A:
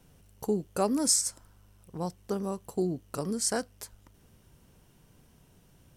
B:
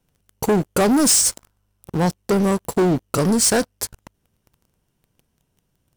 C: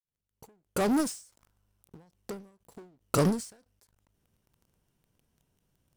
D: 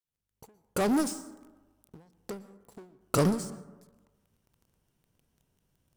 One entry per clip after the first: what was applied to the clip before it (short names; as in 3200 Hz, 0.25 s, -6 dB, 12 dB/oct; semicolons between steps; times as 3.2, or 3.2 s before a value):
sample leveller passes 5
opening faded in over 1.59 s; ending taper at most 130 dB/s; gain -4.5 dB
reverb RT60 1.2 s, pre-delay 0.107 s, DRR 16.5 dB